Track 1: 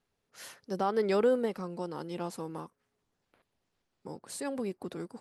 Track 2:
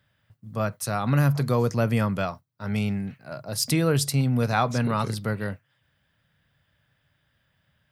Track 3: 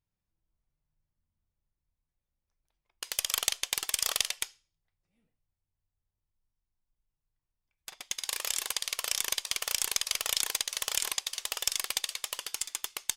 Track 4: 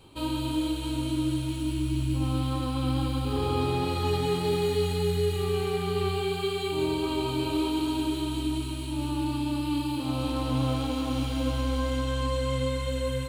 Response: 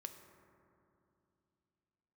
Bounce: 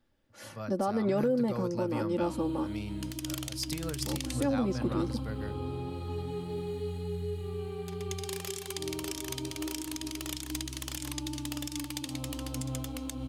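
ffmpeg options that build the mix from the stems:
-filter_complex "[0:a]tiltshelf=f=830:g=6.5,aecho=1:1:3.5:0.84,volume=1.19[s0];[1:a]equalizer=f=4900:t=o:w=0.71:g=7,volume=0.168,asplit=2[s1][s2];[s2]volume=0.398[s3];[2:a]volume=0.447[s4];[3:a]tiltshelf=f=700:g=5,adelay=2050,volume=0.237[s5];[4:a]atrim=start_sample=2205[s6];[s3][s6]afir=irnorm=-1:irlink=0[s7];[s0][s1][s4][s5][s7]amix=inputs=5:normalize=0,alimiter=limit=0.1:level=0:latency=1:release=118"

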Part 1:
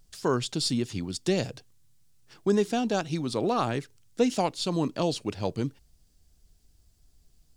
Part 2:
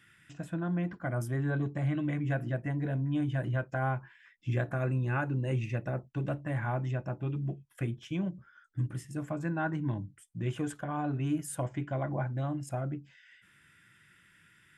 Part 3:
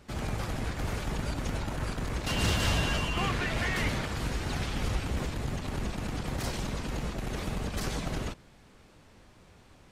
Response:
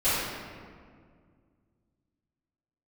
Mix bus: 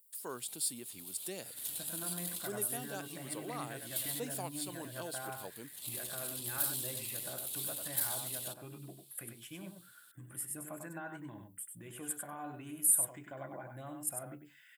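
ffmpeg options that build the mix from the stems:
-filter_complex "[0:a]volume=0.2,asplit=2[s0][s1];[1:a]alimiter=level_in=1.78:limit=0.0631:level=0:latency=1:release=152,volume=0.562,adelay=1400,volume=0.668,asplit=2[s2][s3];[s3]volume=0.501[s4];[2:a]highshelf=f=2500:t=q:w=3:g=13.5,acompressor=threshold=0.0794:ratio=6,aeval=exprs='(tanh(7.08*val(0)+0.65)-tanh(0.65))/7.08':c=same,adelay=200,volume=0.15[s5];[s1]apad=whole_len=446057[s6];[s5][s6]sidechaincompress=threshold=0.00224:ratio=8:attack=5.4:release=171[s7];[s4]aecho=0:1:97:1[s8];[s0][s2][s7][s8]amix=inputs=4:normalize=0,highpass=f=510:p=1,aexciter=amount=10.4:drive=8.5:freq=8800"

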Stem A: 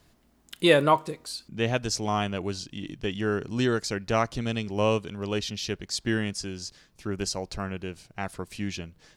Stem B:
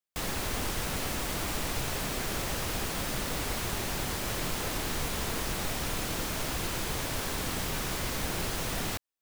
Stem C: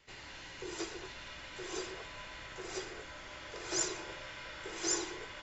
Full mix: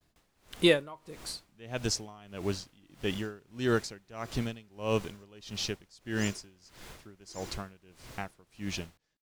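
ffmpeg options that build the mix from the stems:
-filter_complex "[0:a]agate=range=0.0224:threshold=0.00178:ratio=3:detection=peak,volume=1[s0];[1:a]highshelf=f=12000:g=-7,volume=0.178[s1];[2:a]acrusher=bits=8:dc=4:mix=0:aa=0.000001,adelay=2450,volume=0.398,asplit=3[s2][s3][s4];[s2]atrim=end=5.24,asetpts=PTS-STARTPTS,afade=t=out:st=5.236:d=0.004:c=hsin[s5];[s3]atrim=start=5.24:end=6.01,asetpts=PTS-STARTPTS,volume=0[s6];[s4]atrim=start=6.01,asetpts=PTS-STARTPTS,afade=t=in:d=0.004:c=hsin[s7];[s5][s6][s7]concat=n=3:v=0:a=1[s8];[s0][s1][s8]amix=inputs=3:normalize=0,aeval=exprs='val(0)*pow(10,-26*(0.5-0.5*cos(2*PI*1.6*n/s))/20)':c=same"

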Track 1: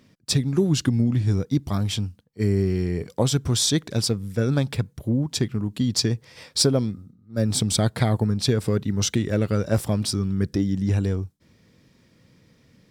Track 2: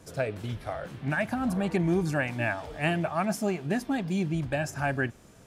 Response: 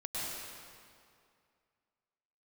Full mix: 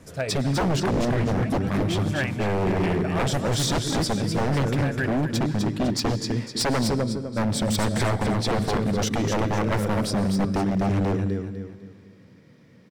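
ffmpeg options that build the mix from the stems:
-filter_complex "[0:a]highpass=140,highshelf=f=2300:g=-10,aeval=exprs='0.631*sin(PI/2*1.78*val(0)/0.631)':c=same,volume=0.473,asplit=4[s0][s1][s2][s3];[s1]volume=0.211[s4];[s2]volume=0.596[s5];[1:a]volume=1.06,asplit=2[s6][s7];[s7]volume=0.237[s8];[s3]apad=whole_len=241120[s9];[s6][s9]sidechaincompress=threshold=0.0447:ratio=8:attack=9:release=310[s10];[2:a]atrim=start_sample=2205[s11];[s4][s11]afir=irnorm=-1:irlink=0[s12];[s5][s8]amix=inputs=2:normalize=0,aecho=0:1:252|504|756|1008|1260:1|0.37|0.137|0.0507|0.0187[s13];[s0][s10][s12][s13]amix=inputs=4:normalize=0,lowshelf=f=76:g=7,aeval=exprs='0.133*(abs(mod(val(0)/0.133+3,4)-2)-1)':c=same,equalizer=f=1900:t=o:w=0.77:g=3"

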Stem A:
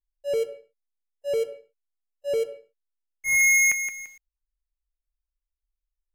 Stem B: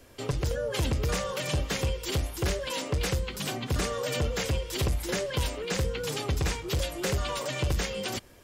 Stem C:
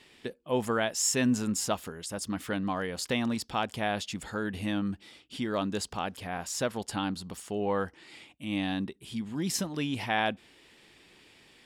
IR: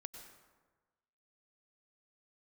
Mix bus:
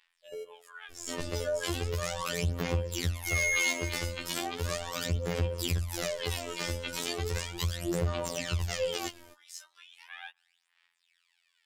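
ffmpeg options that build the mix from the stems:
-filter_complex "[0:a]volume=0.237,asplit=2[s0][s1];[s1]volume=0.531[s2];[1:a]adelay=900,volume=1.06[s3];[2:a]highpass=f=1100:w=0.5412,highpass=f=1100:w=1.3066,volume=0.178,asplit=2[s4][s5];[s5]volume=0.112[s6];[s3][s4]amix=inputs=2:normalize=0,aphaser=in_gain=1:out_gain=1:delay=3.4:decay=0.78:speed=0.37:type=sinusoidal,alimiter=limit=0.1:level=0:latency=1:release=98,volume=1[s7];[3:a]atrim=start_sample=2205[s8];[s2][s6]amix=inputs=2:normalize=0[s9];[s9][s8]afir=irnorm=-1:irlink=0[s10];[s0][s7][s10]amix=inputs=3:normalize=0,afftfilt=real='hypot(re,im)*cos(PI*b)':imag='0':win_size=2048:overlap=0.75"

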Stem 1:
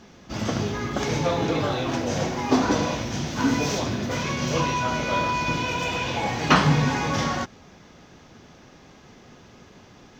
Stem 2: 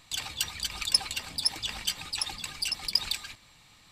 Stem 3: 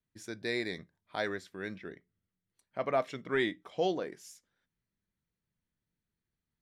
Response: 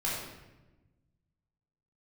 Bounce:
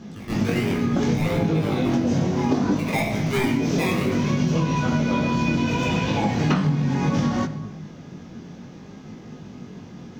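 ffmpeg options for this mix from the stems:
-filter_complex "[0:a]equalizer=f=190:w=0.78:g=15,volume=1.33,asplit=2[s0][s1];[s1]volume=0.106[s2];[1:a]acompressor=threshold=0.0141:ratio=6,volume=0.133[s3];[2:a]bass=f=250:g=12,treble=f=4000:g=0,acrusher=samples=23:mix=1:aa=0.000001:lfo=1:lforange=13.8:lforate=1.1,equalizer=f=2300:w=1.6:g=10,volume=1.06,asplit=3[s4][s5][s6];[s5]volume=0.708[s7];[s6]apad=whole_len=449542[s8];[s0][s8]sidechaincompress=threshold=0.0355:ratio=8:attack=5.9:release=639[s9];[3:a]atrim=start_sample=2205[s10];[s2][s7]amix=inputs=2:normalize=0[s11];[s11][s10]afir=irnorm=-1:irlink=0[s12];[s9][s3][s4][s12]amix=inputs=4:normalize=0,flanger=delay=19:depth=3:speed=0.65,acompressor=threshold=0.141:ratio=16"

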